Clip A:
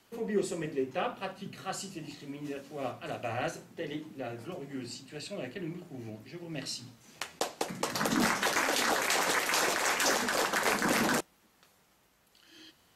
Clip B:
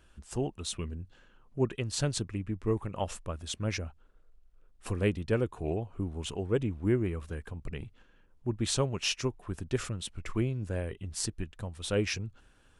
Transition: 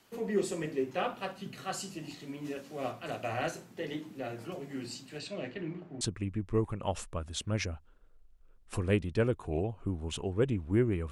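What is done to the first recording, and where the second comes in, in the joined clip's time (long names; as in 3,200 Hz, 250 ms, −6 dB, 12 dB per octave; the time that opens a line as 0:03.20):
clip A
0:05.18–0:06.01: low-pass filter 8,100 Hz → 1,500 Hz
0:06.01: continue with clip B from 0:02.14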